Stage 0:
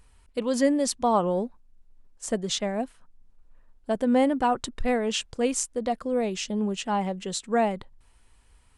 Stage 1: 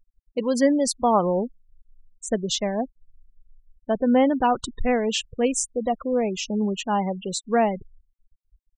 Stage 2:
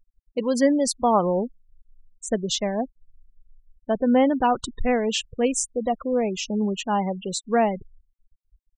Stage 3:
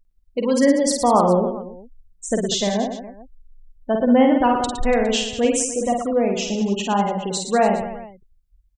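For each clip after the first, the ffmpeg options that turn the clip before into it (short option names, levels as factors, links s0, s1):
-af "afftfilt=real='re*gte(hypot(re,im),0.0251)':imag='im*gte(hypot(re,im),0.0251)':win_size=1024:overlap=0.75,volume=1.41"
-af anull
-af "aecho=1:1:50|112.5|190.6|288.3|410.4:0.631|0.398|0.251|0.158|0.1,volume=1.26"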